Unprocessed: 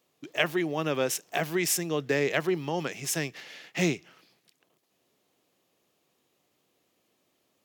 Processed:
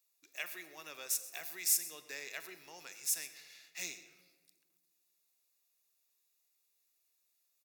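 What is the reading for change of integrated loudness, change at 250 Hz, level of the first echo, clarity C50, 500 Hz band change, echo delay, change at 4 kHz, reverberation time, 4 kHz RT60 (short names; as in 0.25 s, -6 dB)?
-8.0 dB, -30.0 dB, -18.5 dB, 11.5 dB, -26.0 dB, 0.128 s, -9.0 dB, 1.6 s, 0.90 s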